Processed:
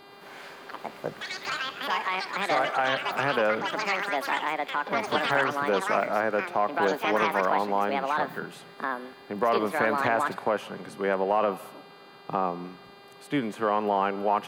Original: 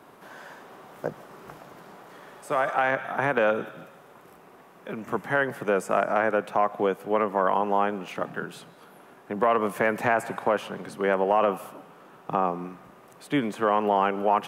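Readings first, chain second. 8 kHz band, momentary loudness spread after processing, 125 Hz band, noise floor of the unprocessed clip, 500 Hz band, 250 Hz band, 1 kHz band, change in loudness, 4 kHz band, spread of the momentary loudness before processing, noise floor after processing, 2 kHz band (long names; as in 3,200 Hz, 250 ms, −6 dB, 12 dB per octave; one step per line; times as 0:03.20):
+2.0 dB, 14 LU, −2.5 dB, −52 dBFS, −2.0 dB, −1.5 dB, 0.0 dB, −1.0 dB, +8.5 dB, 21 LU, −50 dBFS, +1.5 dB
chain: delay with pitch and tempo change per echo 108 ms, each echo +6 semitones, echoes 3
hum with harmonics 400 Hz, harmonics 12, −50 dBFS −3 dB per octave
level −2.5 dB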